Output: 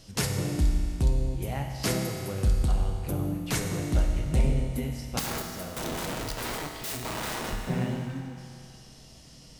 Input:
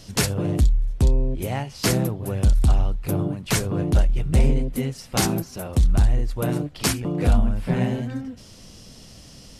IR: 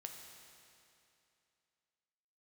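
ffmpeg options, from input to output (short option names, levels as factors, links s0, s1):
-filter_complex "[0:a]asettb=1/sr,asplit=3[s0][s1][s2];[s0]atrim=end=5.194[s3];[s1]atrim=start=5.19:end=7.53,asetpts=PTS-STARTPTS,afade=t=in:d=0.004:c=qsin,afade=t=out:st=2.336:d=0.004:c=qsin,aeval=exprs='(mod(13.3*val(0)+1,2)-1)/13.3':c=same[s4];[s2]atrim=start=7.526[s5];[s3][s4]acrossfade=d=0.004:c1=hsin:c2=qsin[s6];[s6][s5]acrossfade=d=0.004:c1=qsin:c2=hsin[s7];[1:a]atrim=start_sample=2205[s8];[s7][s8]afir=irnorm=-1:irlink=0,volume=0.841"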